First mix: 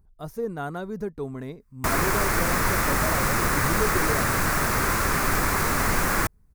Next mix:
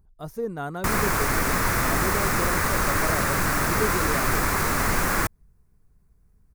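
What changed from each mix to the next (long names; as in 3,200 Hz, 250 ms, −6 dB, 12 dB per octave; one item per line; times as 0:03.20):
background: entry −1.00 s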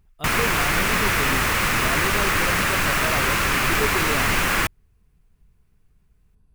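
background: entry −0.60 s
master: add parametric band 2,900 Hz +14 dB 0.89 octaves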